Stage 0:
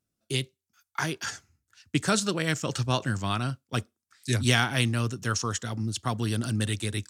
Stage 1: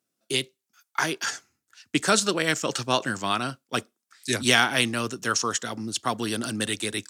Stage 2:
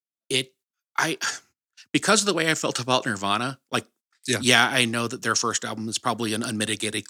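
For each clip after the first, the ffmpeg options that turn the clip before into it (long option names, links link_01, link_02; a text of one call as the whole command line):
ffmpeg -i in.wav -af "highpass=270,volume=5dB" out.wav
ffmpeg -i in.wav -af "agate=range=-27dB:threshold=-52dB:ratio=16:detection=peak,volume=2dB" out.wav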